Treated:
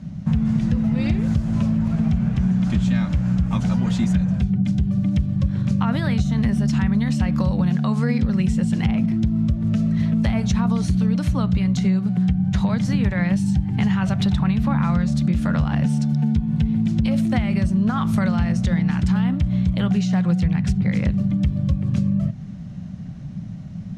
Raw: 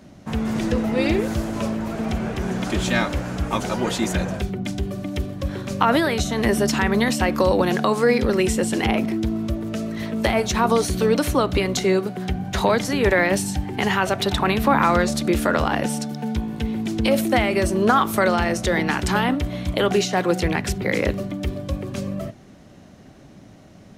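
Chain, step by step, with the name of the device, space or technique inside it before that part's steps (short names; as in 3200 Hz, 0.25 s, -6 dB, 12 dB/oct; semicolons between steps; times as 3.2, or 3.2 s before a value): jukebox (LPF 7600 Hz 12 dB/oct; resonant low shelf 250 Hz +13 dB, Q 3; compressor, threshold -15 dBFS, peak gain reduction 12.5 dB); gain -1.5 dB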